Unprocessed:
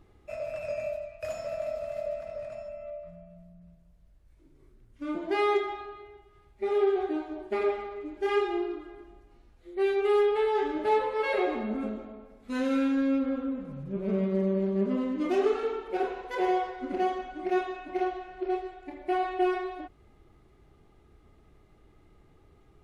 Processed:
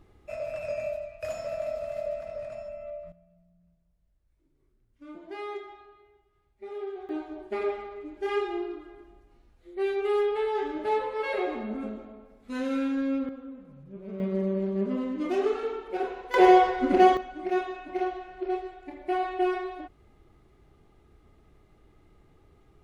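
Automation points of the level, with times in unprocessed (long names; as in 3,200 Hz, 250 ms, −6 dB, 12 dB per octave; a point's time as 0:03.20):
+1 dB
from 0:03.12 −11.5 dB
from 0:07.09 −2 dB
from 0:13.29 −10 dB
from 0:14.20 −1 dB
from 0:16.34 +10 dB
from 0:17.17 0 dB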